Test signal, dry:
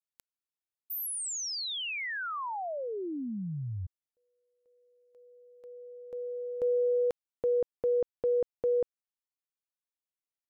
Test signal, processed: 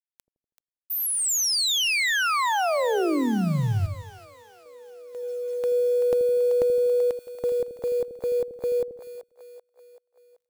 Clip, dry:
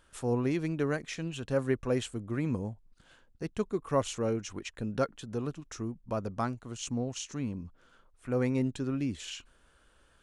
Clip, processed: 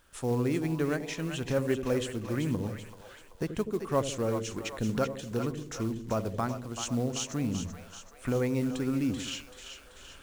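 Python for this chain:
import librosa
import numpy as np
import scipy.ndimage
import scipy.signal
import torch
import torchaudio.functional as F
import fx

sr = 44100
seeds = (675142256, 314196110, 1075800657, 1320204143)

y = fx.recorder_agc(x, sr, target_db=-21.0, rise_db_per_s=8.5, max_gain_db=30)
y = fx.quant_companded(y, sr, bits=6)
y = fx.echo_split(y, sr, split_hz=570.0, low_ms=81, high_ms=384, feedback_pct=52, wet_db=-8.0)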